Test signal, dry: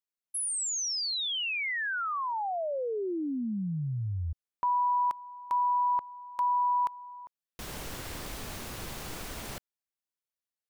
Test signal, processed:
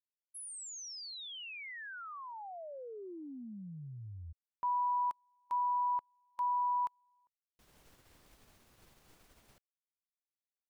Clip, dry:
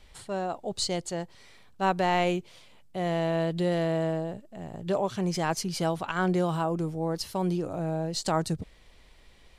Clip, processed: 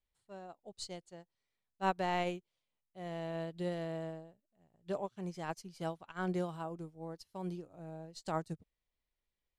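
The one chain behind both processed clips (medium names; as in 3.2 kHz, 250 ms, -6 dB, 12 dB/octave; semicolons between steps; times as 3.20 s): upward expansion 2.5:1, over -41 dBFS; trim -5.5 dB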